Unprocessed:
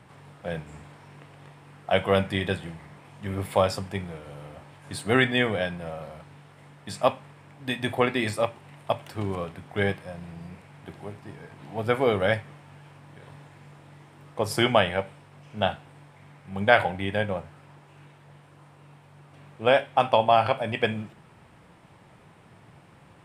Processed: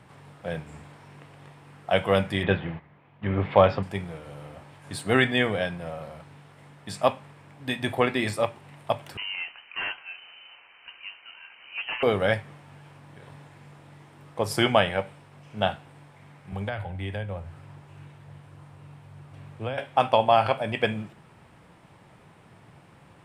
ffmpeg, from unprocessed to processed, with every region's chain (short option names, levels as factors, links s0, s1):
-filter_complex "[0:a]asettb=1/sr,asplit=3[s0][s1][s2];[s0]atrim=end=2.434[s3];[s1]atrim=start=2.43:end=3.83,asetpts=PTS-STARTPTS,afade=t=in:d=0.004:c=qsin,afade=t=out:st=1.396:d=0.004:c=qsin,agate=range=0.224:threshold=0.00631:ratio=16:release=100:detection=peak,lowpass=f=3100:w=0.5412,lowpass=f=3100:w=1.3066,acontrast=22[s4];[s2]atrim=start=3.826[s5];[s3][s4]acrossfade=d=0.004:c1=hsin:c2=qsin[s6];[s6][s5]acrossfade=d=0.004:c1=qsin:c2=hsin,asettb=1/sr,asplit=3[s7][s8][s9];[s7]atrim=end=9.174[s10];[s8]atrim=start=9.17:end=12.03,asetpts=PTS-STARTPTS,afade=t=in:d=0.004:c=qsin,afade=t=out:st=2.856:d=0.004:c=qsin,highpass=310,aeval=exprs='0.0596*(abs(mod(val(0)/0.0596+3,4)-2)-1)':c=same,lowpass=f=2700:t=q:w=0.5098,lowpass=f=2700:t=q:w=0.6013,lowpass=f=2700:t=q:w=0.9,lowpass=f=2700:t=q:w=2.563,afreqshift=-3200[s11];[s9]atrim=start=12.026[s12];[s10][s11]acrossfade=d=0.004:c1=hsin:c2=qsin[s13];[s13][s12]acrossfade=d=0.004:c1=qsin:c2=hsin,asettb=1/sr,asplit=3[s14][s15][s16];[s14]atrim=end=16.524[s17];[s15]atrim=start=16.52:end=19.78,asetpts=PTS-STARTPTS,afade=t=in:d=0.004:c=qsin,afade=t=out:st=3.256:d=0.004:c=qsin,equalizer=f=85:t=o:w=1.1:g=14,acrossover=split=120|250[s18][s19][s20];[s18]acompressor=threshold=0.0141:ratio=4[s21];[s19]acompressor=threshold=0.00631:ratio=4[s22];[s20]acompressor=threshold=0.02:ratio=4[s23];[s21][s22][s23]amix=inputs=3:normalize=0[s24];[s16]atrim=start=19.776[s25];[s17][s24]acrossfade=d=0.004:c1=hsin:c2=qsin[s26];[s26][s25]acrossfade=d=0.004:c1=qsin:c2=hsin"